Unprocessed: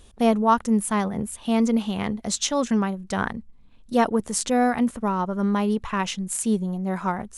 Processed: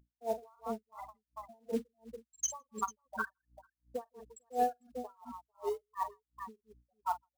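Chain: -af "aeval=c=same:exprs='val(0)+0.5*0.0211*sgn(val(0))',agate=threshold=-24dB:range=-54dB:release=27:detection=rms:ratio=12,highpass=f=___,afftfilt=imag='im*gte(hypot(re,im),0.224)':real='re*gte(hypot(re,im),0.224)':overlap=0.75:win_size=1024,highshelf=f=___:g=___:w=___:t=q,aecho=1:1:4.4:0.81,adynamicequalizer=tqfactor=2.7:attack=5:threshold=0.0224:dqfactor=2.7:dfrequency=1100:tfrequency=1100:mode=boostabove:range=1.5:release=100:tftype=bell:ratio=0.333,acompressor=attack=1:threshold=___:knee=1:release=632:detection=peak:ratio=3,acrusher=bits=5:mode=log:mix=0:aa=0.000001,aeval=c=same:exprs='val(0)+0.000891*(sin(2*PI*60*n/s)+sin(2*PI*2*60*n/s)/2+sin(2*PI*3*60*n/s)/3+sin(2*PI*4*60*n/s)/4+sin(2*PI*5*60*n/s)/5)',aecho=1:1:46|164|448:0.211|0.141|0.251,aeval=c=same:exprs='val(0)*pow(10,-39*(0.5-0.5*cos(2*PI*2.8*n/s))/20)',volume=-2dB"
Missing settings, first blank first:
510, 5800, 8.5, 3, -21dB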